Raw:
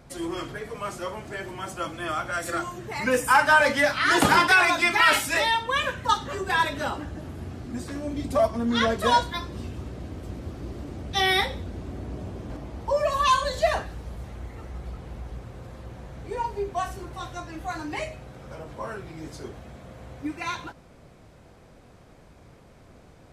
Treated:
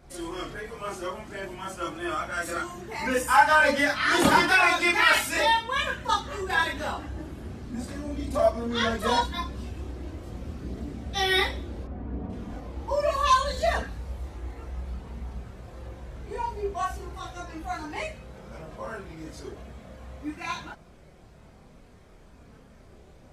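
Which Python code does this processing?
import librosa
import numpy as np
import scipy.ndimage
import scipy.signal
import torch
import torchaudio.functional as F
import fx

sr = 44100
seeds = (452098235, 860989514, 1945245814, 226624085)

y = fx.bessel_lowpass(x, sr, hz=1500.0, order=2, at=(11.84, 12.3))
y = fx.chorus_voices(y, sr, voices=6, hz=0.17, base_ms=29, depth_ms=3.0, mix_pct=55)
y = y * librosa.db_to_amplitude(1.5)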